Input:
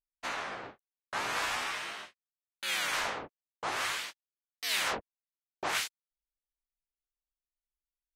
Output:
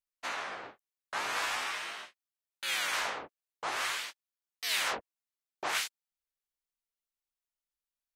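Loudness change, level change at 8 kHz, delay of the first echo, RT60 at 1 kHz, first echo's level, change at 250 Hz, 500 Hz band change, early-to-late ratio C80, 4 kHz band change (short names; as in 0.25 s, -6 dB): 0.0 dB, 0.0 dB, none, none, none, -4.5 dB, -2.0 dB, none, 0.0 dB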